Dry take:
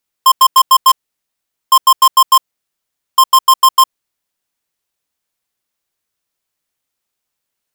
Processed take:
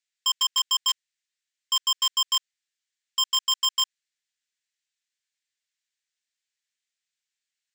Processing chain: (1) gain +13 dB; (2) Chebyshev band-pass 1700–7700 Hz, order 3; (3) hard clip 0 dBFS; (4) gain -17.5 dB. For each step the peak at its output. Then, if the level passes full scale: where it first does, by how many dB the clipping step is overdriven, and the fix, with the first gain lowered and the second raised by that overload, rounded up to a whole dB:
+7.0, +5.0, 0.0, -17.5 dBFS; step 1, 5.0 dB; step 1 +8 dB, step 4 -12.5 dB

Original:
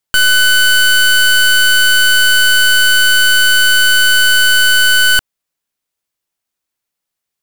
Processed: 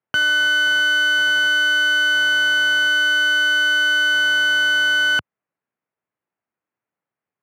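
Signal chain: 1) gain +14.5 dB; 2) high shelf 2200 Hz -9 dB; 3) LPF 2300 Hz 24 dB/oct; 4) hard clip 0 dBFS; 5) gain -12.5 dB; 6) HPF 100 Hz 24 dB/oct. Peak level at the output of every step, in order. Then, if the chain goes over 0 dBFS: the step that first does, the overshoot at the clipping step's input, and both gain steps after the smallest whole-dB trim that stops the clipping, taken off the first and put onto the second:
+5.5, +5.5, +6.0, 0.0, -12.5, -9.5 dBFS; step 1, 6.0 dB; step 1 +8.5 dB, step 5 -6.5 dB

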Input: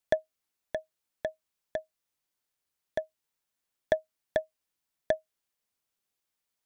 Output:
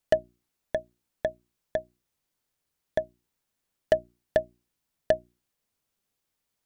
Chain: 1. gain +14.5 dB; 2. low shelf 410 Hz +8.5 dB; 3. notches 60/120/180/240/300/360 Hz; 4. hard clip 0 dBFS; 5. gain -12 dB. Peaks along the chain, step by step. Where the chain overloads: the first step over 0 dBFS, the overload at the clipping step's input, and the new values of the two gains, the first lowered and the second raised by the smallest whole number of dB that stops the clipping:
+3.0, +6.0, +5.0, 0.0, -12.0 dBFS; step 1, 5.0 dB; step 1 +9.5 dB, step 5 -7 dB

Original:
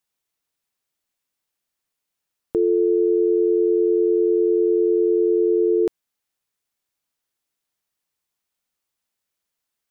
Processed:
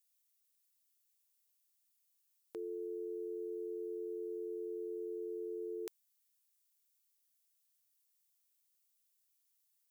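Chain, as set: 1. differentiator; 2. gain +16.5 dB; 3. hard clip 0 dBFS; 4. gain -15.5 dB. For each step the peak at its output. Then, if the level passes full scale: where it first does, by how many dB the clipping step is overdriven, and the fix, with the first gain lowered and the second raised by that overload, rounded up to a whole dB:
-18.0, -1.5, -1.5, -17.0 dBFS; no overload

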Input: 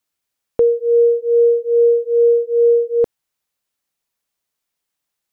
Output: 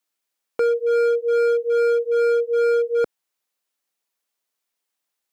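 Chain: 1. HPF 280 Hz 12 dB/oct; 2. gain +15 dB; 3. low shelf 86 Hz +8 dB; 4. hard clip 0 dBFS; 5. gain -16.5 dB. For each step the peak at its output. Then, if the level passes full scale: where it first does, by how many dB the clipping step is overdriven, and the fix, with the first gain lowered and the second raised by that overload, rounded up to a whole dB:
-7.5, +7.5, +7.5, 0.0, -16.5 dBFS; step 2, 7.5 dB; step 2 +7 dB, step 5 -8.5 dB

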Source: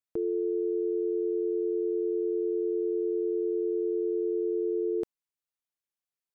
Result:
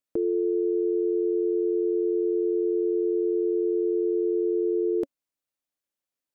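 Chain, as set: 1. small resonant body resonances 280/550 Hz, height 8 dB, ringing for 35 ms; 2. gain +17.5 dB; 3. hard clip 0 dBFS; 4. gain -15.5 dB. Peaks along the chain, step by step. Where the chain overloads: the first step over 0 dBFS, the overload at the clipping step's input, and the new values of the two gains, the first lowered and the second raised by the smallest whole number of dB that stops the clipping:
-19.5, -2.0, -2.0, -17.5 dBFS; no overload

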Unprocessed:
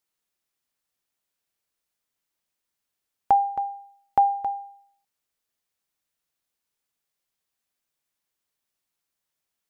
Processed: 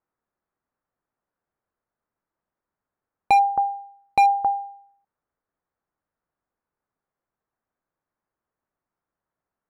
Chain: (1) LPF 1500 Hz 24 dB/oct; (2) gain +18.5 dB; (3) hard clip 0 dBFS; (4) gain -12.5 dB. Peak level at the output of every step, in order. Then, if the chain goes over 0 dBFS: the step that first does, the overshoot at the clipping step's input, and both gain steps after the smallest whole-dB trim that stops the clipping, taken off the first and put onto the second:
-10.0, +8.5, 0.0, -12.5 dBFS; step 2, 8.5 dB; step 2 +9.5 dB, step 4 -3.5 dB

